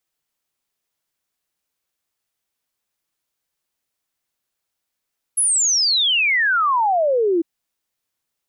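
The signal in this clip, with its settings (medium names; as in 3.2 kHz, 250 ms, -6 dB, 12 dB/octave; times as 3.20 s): log sweep 11 kHz -> 320 Hz 2.05 s -14.5 dBFS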